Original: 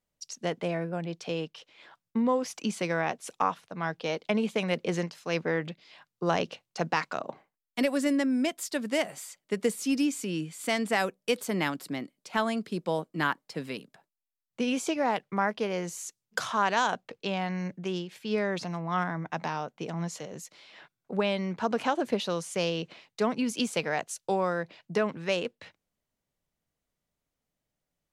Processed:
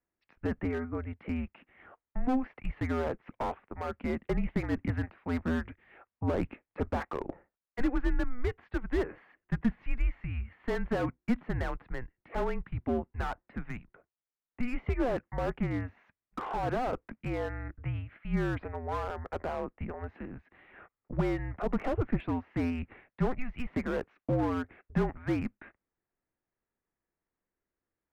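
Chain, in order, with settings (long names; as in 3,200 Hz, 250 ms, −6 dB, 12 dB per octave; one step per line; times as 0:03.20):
single-sideband voice off tune −250 Hz 220–2,400 Hz
slew-rate limiting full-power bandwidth 26 Hz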